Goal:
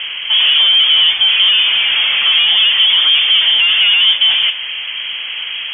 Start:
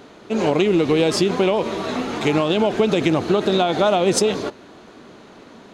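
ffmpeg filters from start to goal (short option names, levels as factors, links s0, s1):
-filter_complex "[0:a]asplit=2[s0][s1];[s1]highpass=f=720:p=1,volume=39.8,asoftclip=type=tanh:threshold=0.473[s2];[s0][s2]amix=inputs=2:normalize=0,lowpass=f=1500:p=1,volume=0.501,lowpass=f=3000:t=q:w=0.5098,lowpass=f=3000:t=q:w=0.6013,lowpass=f=3000:t=q:w=0.9,lowpass=f=3000:t=q:w=2.563,afreqshift=-3500,crystalizer=i=6:c=0,volume=0.447"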